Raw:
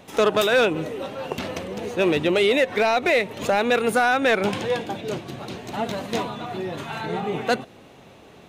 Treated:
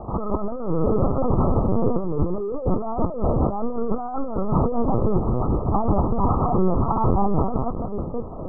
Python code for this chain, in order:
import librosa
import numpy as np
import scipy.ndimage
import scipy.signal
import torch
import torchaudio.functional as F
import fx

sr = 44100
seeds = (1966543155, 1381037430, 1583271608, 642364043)

p1 = fx.echo_split(x, sr, split_hz=490.0, low_ms=656, high_ms=164, feedback_pct=52, wet_db=-13.5)
p2 = fx.lpc_vocoder(p1, sr, seeds[0], excitation='pitch_kept', order=8)
p3 = 10.0 ** (-21.5 / 20.0) * (np.abs((p2 / 10.0 ** (-21.5 / 20.0) + 3.0) % 4.0 - 2.0) - 1.0)
p4 = p2 + F.gain(torch.from_numpy(p3), -9.0).numpy()
p5 = fx.over_compress(p4, sr, threshold_db=-26.0, ratio=-1.0)
p6 = fx.dynamic_eq(p5, sr, hz=590.0, q=2.0, threshold_db=-42.0, ratio=4.0, max_db=-8)
p7 = scipy.signal.sosfilt(scipy.signal.cheby1(10, 1.0, 1300.0, 'lowpass', fs=sr, output='sos'), p6)
y = F.gain(torch.from_numpy(p7), 8.0).numpy()